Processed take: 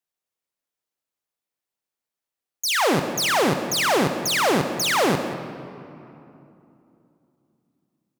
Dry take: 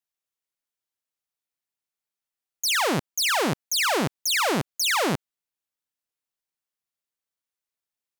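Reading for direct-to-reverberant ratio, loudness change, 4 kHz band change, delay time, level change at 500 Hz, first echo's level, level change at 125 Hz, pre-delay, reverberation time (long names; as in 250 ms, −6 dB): 7.5 dB, +2.5 dB, +1.0 dB, 182 ms, +6.0 dB, −13.0 dB, +3.0 dB, 20 ms, 3.0 s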